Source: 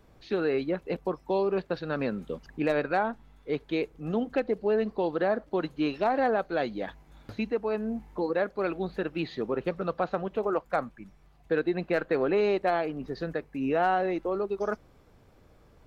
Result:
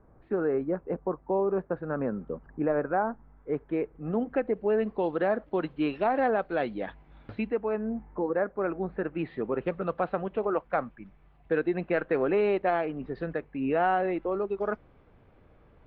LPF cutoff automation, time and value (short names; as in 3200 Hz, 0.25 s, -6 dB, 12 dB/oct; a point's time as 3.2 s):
LPF 24 dB/oct
3.1 s 1500 Hz
4.34 s 2200 Hz
5.1 s 3200 Hz
7.33 s 3200 Hz
8.04 s 1800 Hz
8.78 s 1800 Hz
9.71 s 3000 Hz